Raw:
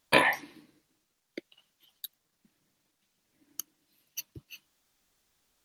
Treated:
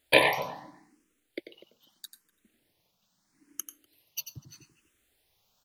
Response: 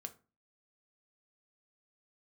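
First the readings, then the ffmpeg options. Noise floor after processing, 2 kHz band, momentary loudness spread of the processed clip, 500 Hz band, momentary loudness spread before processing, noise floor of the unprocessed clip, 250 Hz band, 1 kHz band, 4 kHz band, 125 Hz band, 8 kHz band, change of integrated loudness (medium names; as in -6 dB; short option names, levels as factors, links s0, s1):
-76 dBFS, +0.5 dB, 26 LU, +4.5 dB, 24 LU, -79 dBFS, -1.0 dB, 0.0 dB, +4.0 dB, +1.5 dB, +1.5 dB, +1.5 dB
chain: -filter_complex "[0:a]asplit=2[s0][s1];[s1]adelay=246,lowpass=f=850:p=1,volume=0.266,asplit=2[s2][s3];[s3]adelay=246,lowpass=f=850:p=1,volume=0.18[s4];[s0][s2][s4]amix=inputs=3:normalize=0,asplit=2[s5][s6];[1:a]atrim=start_sample=2205,adelay=91[s7];[s6][s7]afir=irnorm=-1:irlink=0,volume=0.596[s8];[s5][s8]amix=inputs=2:normalize=0,asplit=2[s9][s10];[s10]afreqshift=0.79[s11];[s9][s11]amix=inputs=2:normalize=1,volume=1.58"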